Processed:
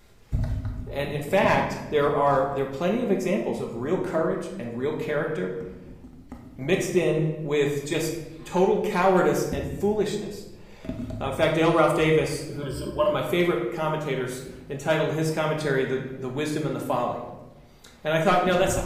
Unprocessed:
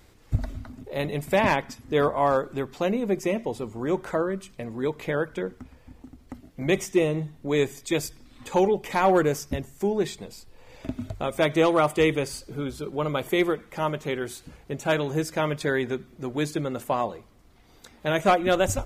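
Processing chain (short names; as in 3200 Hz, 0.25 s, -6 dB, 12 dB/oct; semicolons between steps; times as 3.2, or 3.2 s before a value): 12.62–13.12 ripple EQ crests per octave 1.3, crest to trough 18 dB; shoebox room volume 470 m³, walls mixed, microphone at 1.3 m; gain -2 dB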